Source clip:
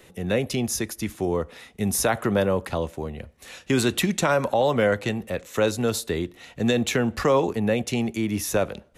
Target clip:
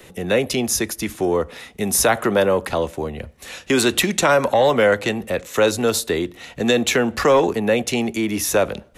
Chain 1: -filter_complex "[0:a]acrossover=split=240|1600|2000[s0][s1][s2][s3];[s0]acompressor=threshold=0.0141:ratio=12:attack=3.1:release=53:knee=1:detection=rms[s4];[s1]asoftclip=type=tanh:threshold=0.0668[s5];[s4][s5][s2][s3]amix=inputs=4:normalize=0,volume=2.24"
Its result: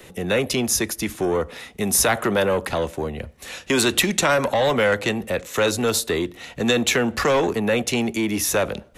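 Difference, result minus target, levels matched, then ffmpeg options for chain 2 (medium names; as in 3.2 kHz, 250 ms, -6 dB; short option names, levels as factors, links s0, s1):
saturation: distortion +11 dB
-filter_complex "[0:a]acrossover=split=240|1600|2000[s0][s1][s2][s3];[s0]acompressor=threshold=0.0141:ratio=12:attack=3.1:release=53:knee=1:detection=rms[s4];[s1]asoftclip=type=tanh:threshold=0.2[s5];[s4][s5][s2][s3]amix=inputs=4:normalize=0,volume=2.24"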